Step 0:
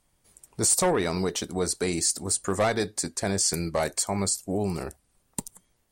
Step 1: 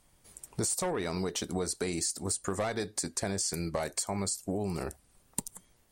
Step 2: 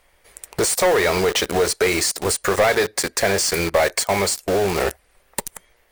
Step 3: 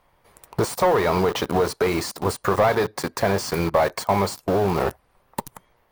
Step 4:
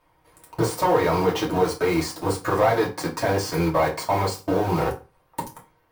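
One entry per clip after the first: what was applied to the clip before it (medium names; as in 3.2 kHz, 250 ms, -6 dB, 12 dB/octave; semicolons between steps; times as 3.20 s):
compression 6:1, threshold -34 dBFS, peak gain reduction 15 dB; trim +4 dB
graphic EQ 125/250/500/2000/8000 Hz -11/-9/+7/+9/-7 dB; in parallel at -3 dB: companded quantiser 2-bit; on the sum: trim +7 dB
ten-band graphic EQ 125 Hz +12 dB, 250 Hz +6 dB, 1 kHz +10 dB, 2 kHz -4 dB, 8 kHz -8 dB; trim -6 dB
reverberation RT60 0.30 s, pre-delay 3 ms, DRR -3.5 dB; trim -6 dB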